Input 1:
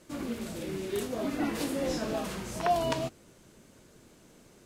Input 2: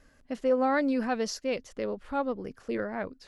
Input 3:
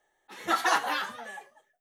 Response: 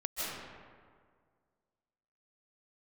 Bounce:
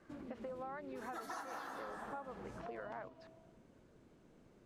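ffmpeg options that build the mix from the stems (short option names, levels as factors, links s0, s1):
-filter_complex "[0:a]lowpass=f=1300:p=1,acompressor=threshold=0.01:ratio=6,volume=0.398,asplit=2[s0][s1];[s1]volume=0.178[s2];[1:a]acompressor=threshold=0.0251:ratio=6,bandpass=f=1000:t=q:w=1.4:csg=0,volume=1.12,asplit=2[s3][s4];[2:a]equalizer=f=2900:t=o:w=1:g=-12.5,adelay=650,volume=0.75,asplit=2[s5][s6];[s6]volume=0.266[s7];[s4]apad=whole_len=108467[s8];[s5][s8]sidechaincompress=threshold=0.00251:ratio=3:attack=16:release=390[s9];[3:a]atrim=start_sample=2205[s10];[s2][s7]amix=inputs=2:normalize=0[s11];[s11][s10]afir=irnorm=-1:irlink=0[s12];[s0][s3][s9][s12]amix=inputs=4:normalize=0,acompressor=threshold=0.00794:ratio=12"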